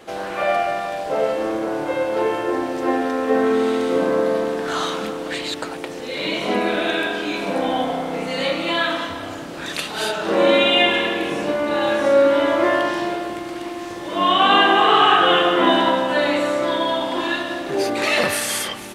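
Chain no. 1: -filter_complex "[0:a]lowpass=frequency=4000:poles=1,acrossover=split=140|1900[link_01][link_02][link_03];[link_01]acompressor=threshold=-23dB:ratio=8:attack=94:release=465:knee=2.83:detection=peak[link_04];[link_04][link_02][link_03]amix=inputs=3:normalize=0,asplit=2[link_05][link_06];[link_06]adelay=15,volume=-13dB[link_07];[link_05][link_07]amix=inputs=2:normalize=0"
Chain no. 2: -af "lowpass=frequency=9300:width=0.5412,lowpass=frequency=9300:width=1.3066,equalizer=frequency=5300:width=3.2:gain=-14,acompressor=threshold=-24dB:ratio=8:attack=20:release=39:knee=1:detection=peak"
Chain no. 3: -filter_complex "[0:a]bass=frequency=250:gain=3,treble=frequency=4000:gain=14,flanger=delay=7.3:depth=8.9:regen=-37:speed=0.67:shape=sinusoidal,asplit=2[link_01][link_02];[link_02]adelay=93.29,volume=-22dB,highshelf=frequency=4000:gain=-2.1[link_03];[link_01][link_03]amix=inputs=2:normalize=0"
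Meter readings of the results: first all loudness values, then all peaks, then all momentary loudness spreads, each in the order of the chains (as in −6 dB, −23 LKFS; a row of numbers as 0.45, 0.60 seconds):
−19.5, −24.0, −21.0 LKFS; −2.0, −7.5, −4.0 dBFS; 13, 6, 12 LU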